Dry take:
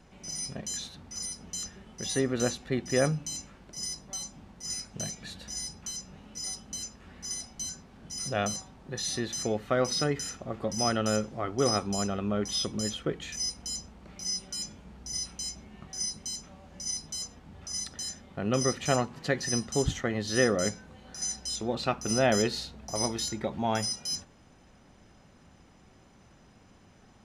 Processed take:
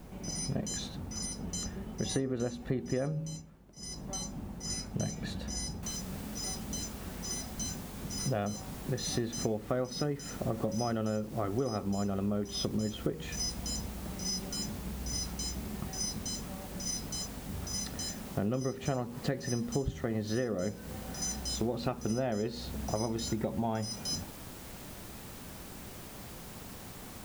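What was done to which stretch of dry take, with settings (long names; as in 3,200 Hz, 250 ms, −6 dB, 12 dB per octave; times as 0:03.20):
0:03.12–0:04.06: duck −14.5 dB, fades 0.31 s
0:05.83: noise floor change −62 dB −48 dB
whole clip: tilt shelving filter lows +6.5 dB, about 1,100 Hz; hum removal 79.44 Hz, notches 7; downward compressor 12 to 1, threshold −32 dBFS; level +3.5 dB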